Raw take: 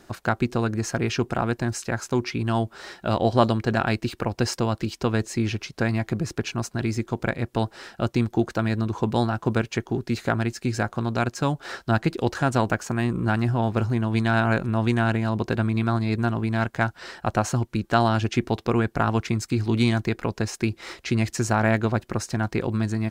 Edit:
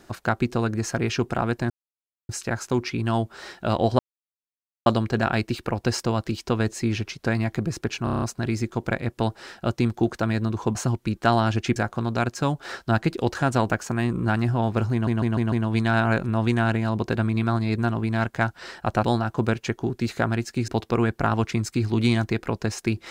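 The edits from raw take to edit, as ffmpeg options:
-filter_complex "[0:a]asplit=17[s0][s1][s2][s3][s4][s5][s6][s7][s8][s9][s10][s11][s12][s13][s14][s15][s16];[s0]atrim=end=1.7,asetpts=PTS-STARTPTS,afade=t=out:st=1.696:d=0.004:c=hsin,apad=pad_dur=0.59[s17];[s1]atrim=start=1.7:end=3.4,asetpts=PTS-STARTPTS,afade=t=in:d=0.004:c=hsin,afade=t=out:st=1.696:d=0.004:c=hsin,apad=pad_dur=0.87[s18];[s2]atrim=start=3.4:end=6.612,asetpts=PTS-STARTPTS,afade=t=in:d=0.004:c=hsin[s19];[s3]atrim=start=6.578:end=6.612[s20];[s4]atrim=start=6.578:end=6.612[s21];[s5]atrim=start=6.578:end=6.612[s22];[s6]atrim=start=6.578:end=6.612[s23];[s7]atrim=start=6.578:end=6.612[s24];[s8]atrim=start=6.578:end=9.112[s25];[s9]atrim=start=17.428:end=18.442[s26];[s10]atrim=start=10.758:end=14.072[s27];[s11]atrim=start=13.918:end=14.072[s28];[s12]atrim=start=13.918:end=14.072[s29];[s13]atrim=start=13.918:end=14.072[s30];[s14]atrim=start=13.918:end=17.432[s31];[s15]atrim=start=9.108:end=10.762[s32];[s16]atrim=start=18.438[s33];[s17][s18][s19]concat=n=3:v=0:a=1[s34];[s34][s20]acrossfade=d=0.004:c1=hsin:c2=hsin[s35];[s35][s21]acrossfade=d=0.004:c1=hsin:c2=hsin[s36];[s36][s22]acrossfade=d=0.004:c1=hsin:c2=hsin[s37];[s37][s23]acrossfade=d=0.004:c1=hsin:c2=hsin[s38];[s38][s24]acrossfade=d=0.004:c1=hsin:c2=hsin[s39];[s39][s25]acrossfade=d=0.004:c1=hsin:c2=hsin[s40];[s40][s26]acrossfade=d=0.004:c1=hsin:c2=hsin[s41];[s41][s27]acrossfade=d=0.004:c1=hsin:c2=hsin[s42];[s42][s28]acrossfade=d=0.004:c1=hsin:c2=hsin[s43];[s43][s29]acrossfade=d=0.004:c1=hsin:c2=hsin[s44];[s44][s30]acrossfade=d=0.004:c1=hsin:c2=hsin[s45];[s45][s31]acrossfade=d=0.004:c1=hsin:c2=hsin[s46];[s46][s32]acrossfade=d=0.004:c1=hsin:c2=hsin[s47];[s47][s33]acrossfade=d=0.004:c1=hsin:c2=hsin"

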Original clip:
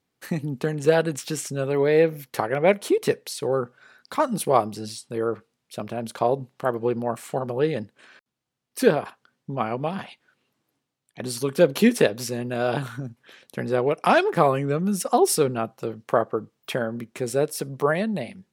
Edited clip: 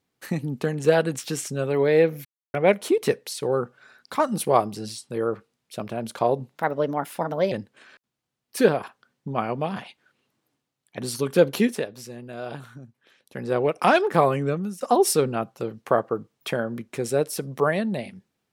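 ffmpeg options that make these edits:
-filter_complex "[0:a]asplit=8[s0][s1][s2][s3][s4][s5][s6][s7];[s0]atrim=end=2.25,asetpts=PTS-STARTPTS,afade=t=out:st=2.246:d=0.004:c=hsin[s8];[s1]atrim=start=2.25:end=2.54,asetpts=PTS-STARTPTS,volume=0[s9];[s2]atrim=start=2.54:end=6.554,asetpts=PTS-STARTPTS,afade=t=in:d=0.004:c=hsin[s10];[s3]atrim=start=6.55:end=7.74,asetpts=PTS-STARTPTS,asetrate=54243,aresample=44100[s11];[s4]atrim=start=7.736:end=12.04,asetpts=PTS-STARTPTS,afade=t=out:st=3.944:d=0.36:silence=0.316228[s12];[s5]atrim=start=12.04:end=13.47,asetpts=PTS-STARTPTS,volume=0.316[s13];[s6]atrim=start=13.47:end=15.03,asetpts=PTS-STARTPTS,afade=t=in:d=0.36:silence=0.316228,afade=t=out:st=1.23:d=0.33:silence=0.105925[s14];[s7]atrim=start=15.03,asetpts=PTS-STARTPTS,afade=t=in:d=0.004:c=hsin:silence=0.105925[s15];[s8][s9][s10]concat=n=3:v=0:a=1[s16];[s16][s11]acrossfade=d=0.004:c1=hsin:c2=hsin[s17];[s12][s13][s14][s15]concat=n=4:v=0:a=1[s18];[s17][s18]acrossfade=d=0.004:c1=hsin:c2=hsin"

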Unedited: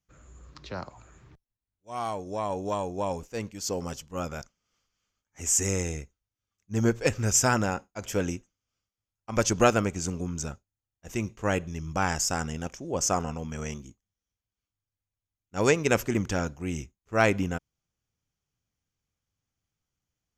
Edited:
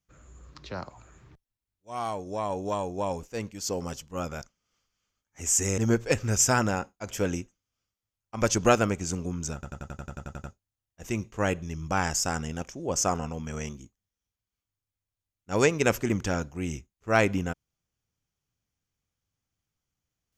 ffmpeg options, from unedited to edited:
-filter_complex "[0:a]asplit=12[s0][s1][s2][s3][s4][s5][s6][s7][s8][s9][s10][s11];[s0]atrim=end=5.782[s12];[s1]atrim=start=6.728:end=10.582[s13];[s2]atrim=start=10.488:end=10.582[s14];[s3]atrim=start=10.488:end=10.582[s15];[s4]atrim=start=10.488:end=10.582[s16];[s5]atrim=start=10.488:end=10.582[s17];[s6]atrim=start=10.488:end=10.582[s18];[s7]atrim=start=10.488:end=10.582[s19];[s8]atrim=start=10.488:end=10.582[s20];[s9]atrim=start=10.488:end=10.582[s21];[s10]atrim=start=10.488:end=10.582[s22];[s11]atrim=start=10.488[s23];[s12][s13]acrossfade=d=0.004:c1=hsin:c2=hsin[s24];[s24][s14]acrossfade=d=0.004:c1=hsin:c2=hsin[s25];[s25][s15]acrossfade=d=0.004:c1=hsin:c2=hsin[s26];[s26][s16]acrossfade=d=0.004:c1=hsin:c2=hsin[s27];[s27][s17]acrossfade=d=0.004:c1=hsin:c2=hsin[s28];[s28][s18]acrossfade=d=0.004:c1=hsin:c2=hsin[s29];[s29][s19]acrossfade=d=0.004:c1=hsin:c2=hsin[s30];[s30][s20]acrossfade=d=0.004:c1=hsin:c2=hsin[s31];[s31][s21]acrossfade=d=0.004:c1=hsin:c2=hsin[s32];[s32][s22]acrossfade=d=0.004:c1=hsin:c2=hsin[s33];[s33][s23]acrossfade=d=0.004:c1=hsin:c2=hsin"

